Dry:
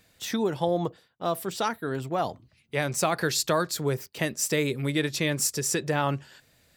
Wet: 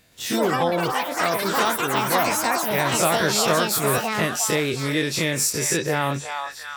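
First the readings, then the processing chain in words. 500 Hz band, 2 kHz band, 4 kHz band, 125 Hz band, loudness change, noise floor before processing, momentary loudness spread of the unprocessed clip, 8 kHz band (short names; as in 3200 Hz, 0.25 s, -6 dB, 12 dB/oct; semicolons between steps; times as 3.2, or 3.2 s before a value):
+5.0 dB, +8.5 dB, +7.5 dB, +2.5 dB, +6.0 dB, -66 dBFS, 7 LU, +6.5 dB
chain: spectral dilation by 60 ms; echoes that change speed 0.119 s, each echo +7 st, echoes 3; delay with a stepping band-pass 0.358 s, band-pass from 990 Hz, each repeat 0.7 oct, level -3 dB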